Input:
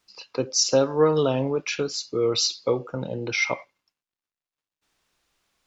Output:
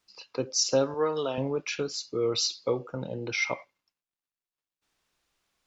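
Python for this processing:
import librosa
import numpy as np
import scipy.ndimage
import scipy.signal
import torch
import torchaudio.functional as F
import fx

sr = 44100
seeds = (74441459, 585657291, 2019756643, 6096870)

y = fx.highpass(x, sr, hz=540.0, slope=6, at=(0.94, 1.38))
y = F.gain(torch.from_numpy(y), -4.5).numpy()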